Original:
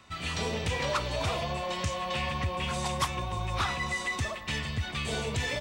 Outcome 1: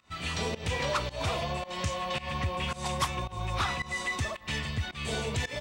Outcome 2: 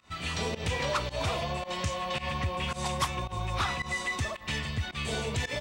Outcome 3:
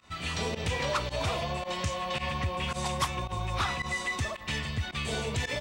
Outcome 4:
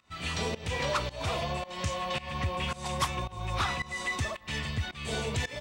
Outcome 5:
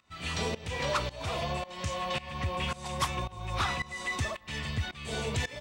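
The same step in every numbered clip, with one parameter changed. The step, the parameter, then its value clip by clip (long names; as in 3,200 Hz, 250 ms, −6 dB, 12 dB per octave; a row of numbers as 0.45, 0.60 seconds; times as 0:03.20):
fake sidechain pumping, release: 207, 118, 70, 305, 453 milliseconds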